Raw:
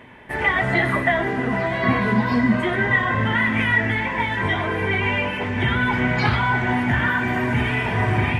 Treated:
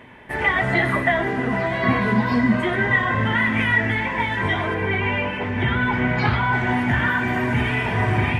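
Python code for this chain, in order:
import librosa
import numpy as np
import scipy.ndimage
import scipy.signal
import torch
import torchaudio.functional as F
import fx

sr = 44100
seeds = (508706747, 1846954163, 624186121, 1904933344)

y = fx.lowpass(x, sr, hz=3300.0, slope=6, at=(4.74, 6.53))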